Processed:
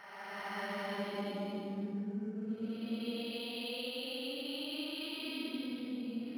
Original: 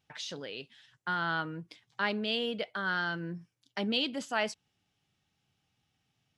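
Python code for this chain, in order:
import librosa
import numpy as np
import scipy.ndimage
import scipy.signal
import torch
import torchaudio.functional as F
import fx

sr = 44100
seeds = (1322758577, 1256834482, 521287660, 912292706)

y = fx.peak_eq(x, sr, hz=1200.0, db=7.5, octaves=0.66)
y = fx.level_steps(y, sr, step_db=22)
y = fx.paulstretch(y, sr, seeds[0], factor=17.0, window_s=0.1, from_s=3.74)
y = np.interp(np.arange(len(y)), np.arange(len(y))[::6], y[::6])
y = y * librosa.db_to_amplitude(5.5)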